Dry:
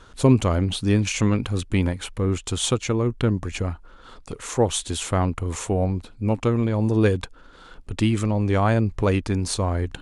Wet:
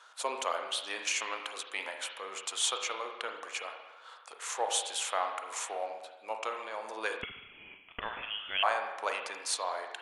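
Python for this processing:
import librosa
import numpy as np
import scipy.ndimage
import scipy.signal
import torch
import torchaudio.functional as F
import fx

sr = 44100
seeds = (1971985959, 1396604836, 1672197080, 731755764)

y = scipy.signal.sosfilt(scipy.signal.butter(4, 680.0, 'highpass', fs=sr, output='sos'), x)
y = fx.rev_spring(y, sr, rt60_s=1.1, pass_ms=(36, 46), chirp_ms=45, drr_db=4.0)
y = fx.freq_invert(y, sr, carrier_hz=3800, at=(7.22, 8.63))
y = y * librosa.db_to_amplitude(-4.5)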